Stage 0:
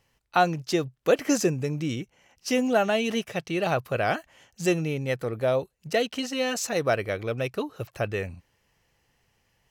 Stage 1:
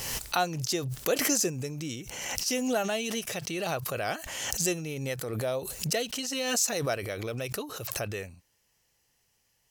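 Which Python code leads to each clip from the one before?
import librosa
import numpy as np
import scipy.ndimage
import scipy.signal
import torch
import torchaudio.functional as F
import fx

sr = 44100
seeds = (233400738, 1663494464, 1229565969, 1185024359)

y = fx.bass_treble(x, sr, bass_db=-2, treble_db=13)
y = fx.pre_swell(y, sr, db_per_s=34.0)
y = y * librosa.db_to_amplitude(-7.0)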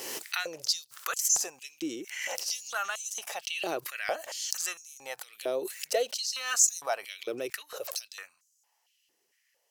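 y = fx.filter_held_highpass(x, sr, hz=4.4, low_hz=350.0, high_hz=6800.0)
y = y * librosa.db_to_amplitude(-4.0)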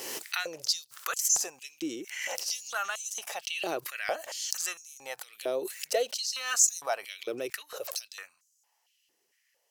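y = x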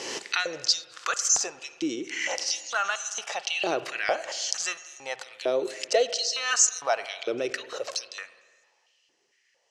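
y = scipy.signal.sosfilt(scipy.signal.butter(4, 6700.0, 'lowpass', fs=sr, output='sos'), x)
y = fx.rev_spring(y, sr, rt60_s=1.6, pass_ms=(46, 51), chirp_ms=60, drr_db=13.5)
y = y * librosa.db_to_amplitude(5.5)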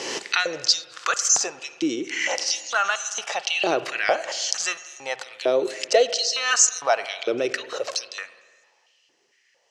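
y = scipy.signal.sosfilt(scipy.signal.butter(2, 83.0, 'highpass', fs=sr, output='sos'), x)
y = fx.high_shelf(y, sr, hz=9900.0, db=-6.0)
y = y * librosa.db_to_amplitude(5.0)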